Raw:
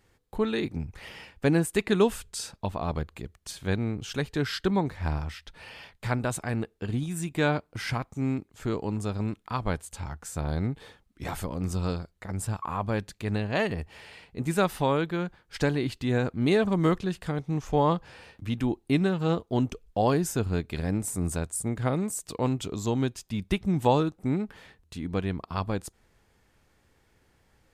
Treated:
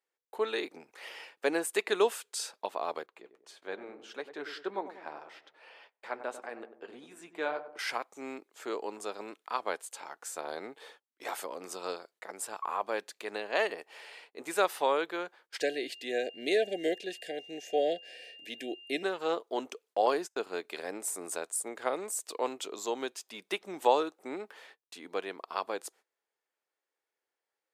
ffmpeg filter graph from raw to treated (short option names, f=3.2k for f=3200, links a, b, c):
-filter_complex "[0:a]asettb=1/sr,asplit=3[a][b][c];[a]atrim=end=3.064[d];[b]atrim=start=3.06:end=7.79,asetpts=PTS-STARTPTS,afade=t=in:d=0.004:c=qsin,afade=t=out:st=4.726:d=0.004:c=qsin,lowpass=f=2k:p=1,asplit=2[e][f];[f]adelay=96,lowpass=f=970:p=1,volume=-9.5dB,asplit=2[g][h];[h]adelay=96,lowpass=f=970:p=1,volume=0.52,asplit=2[i][j];[j]adelay=96,lowpass=f=970:p=1,volume=0.52,asplit=2[k][l];[l]adelay=96,lowpass=f=970:p=1,volume=0.52,asplit=2[m][n];[n]adelay=96,lowpass=f=970:p=1,volume=0.52,asplit=2[o][p];[p]adelay=96,lowpass=f=970:p=1,volume=0.52[q];[e][g][i][k][m][o][q]amix=inputs=7:normalize=0,atrim=end_sample=208593,flanger=delay=2.6:depth=5.6:regen=-61:speed=1.7:shape=triangular[r];[c]atrim=start=7.786[s];[d][r]acrossfade=d=0.004:c1=hsin:c2=qsin[t];[t][s]acrossfade=d=0.004:c1=qsin:c2=hsin,asettb=1/sr,asplit=3[u][v][w];[u]atrim=end=15.604[x];[v]atrim=start=15.6:end=19.03,asetpts=PTS-STARTPTS,afade=t=in:d=0.004:c=qsin,afade=t=out:st=3.426:d=0.004:c=qsin,aeval=exprs='val(0)+0.00398*sin(2*PI*2800*n/s)':c=same,asuperstop=centerf=1100:order=20:qfactor=1.3[y];[w]atrim=start=19.026[z];[x][y]acrossfade=d=0.004:c1=hsin:c2=qsin[aa];[aa][z]acrossfade=d=0.004:c1=qsin:c2=hsin,asettb=1/sr,asplit=3[ab][ac][ad];[ab]atrim=end=20.064[ae];[ac]atrim=start=20.06:end=20.55,asetpts=PTS-STARTPTS,afade=t=in:d=0.004:c=qsin,afade=t=out:st=0.486:d=0.004:c=qsin,acrossover=split=6600[af][ag];[ag]acompressor=threshold=-47dB:ratio=4:attack=1:release=60[ah];[af][ah]amix=inputs=2:normalize=0,agate=range=-40dB:threshold=-33dB:ratio=16:release=100:detection=peak[ai];[ad]atrim=start=20.546[aj];[ae][ai]acrossfade=d=0.004:c1=hsin:c2=qsin[ak];[ak][aj]acrossfade=d=0.004:c1=qsin:c2=hsin,agate=range=-20dB:threshold=-53dB:ratio=16:detection=peak,highpass=f=400:w=0.5412,highpass=f=400:w=1.3066,volume=-1dB"